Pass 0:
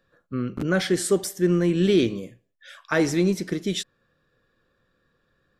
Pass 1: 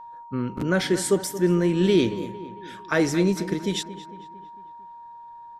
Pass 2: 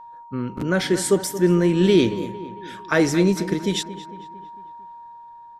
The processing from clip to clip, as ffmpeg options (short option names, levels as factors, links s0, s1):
-filter_complex "[0:a]aeval=exprs='val(0)+0.0112*sin(2*PI*940*n/s)':c=same,asplit=2[s0][s1];[s1]adelay=226,lowpass=f=3000:p=1,volume=0.2,asplit=2[s2][s3];[s3]adelay=226,lowpass=f=3000:p=1,volume=0.54,asplit=2[s4][s5];[s5]adelay=226,lowpass=f=3000:p=1,volume=0.54,asplit=2[s6][s7];[s7]adelay=226,lowpass=f=3000:p=1,volume=0.54,asplit=2[s8][s9];[s9]adelay=226,lowpass=f=3000:p=1,volume=0.54[s10];[s0][s2][s4][s6][s8][s10]amix=inputs=6:normalize=0"
-af "dynaudnorm=f=350:g=5:m=1.5"